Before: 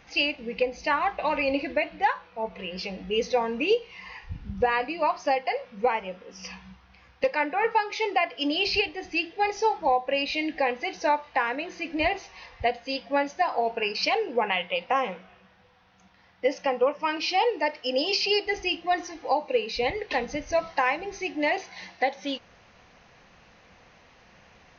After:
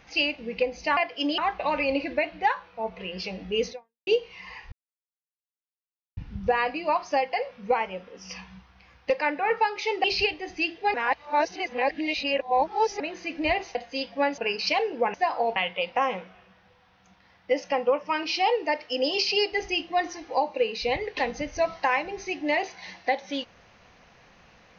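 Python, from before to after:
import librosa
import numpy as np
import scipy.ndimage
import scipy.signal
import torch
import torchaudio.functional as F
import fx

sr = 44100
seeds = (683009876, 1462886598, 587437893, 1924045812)

y = fx.edit(x, sr, fx.fade_out_span(start_s=3.29, length_s=0.37, curve='exp'),
    fx.insert_silence(at_s=4.31, length_s=1.45),
    fx.move(start_s=8.18, length_s=0.41, to_s=0.97),
    fx.reverse_span(start_s=9.49, length_s=2.06),
    fx.cut(start_s=12.3, length_s=0.39),
    fx.move(start_s=13.32, length_s=0.42, to_s=14.5), tone=tone)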